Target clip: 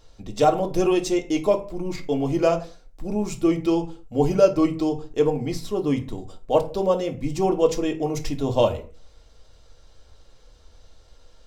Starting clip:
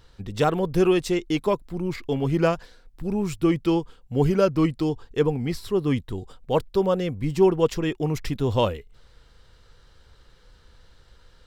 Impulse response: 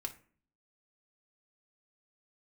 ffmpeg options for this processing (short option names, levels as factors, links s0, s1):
-filter_complex "[0:a]equalizer=f=630:t=o:w=0.67:g=10,equalizer=f=1600:t=o:w=0.67:g=-5,equalizer=f=6300:t=o:w=0.67:g=8[s0];[1:a]atrim=start_sample=2205,afade=t=out:st=0.3:d=0.01,atrim=end_sample=13671[s1];[s0][s1]afir=irnorm=-1:irlink=0"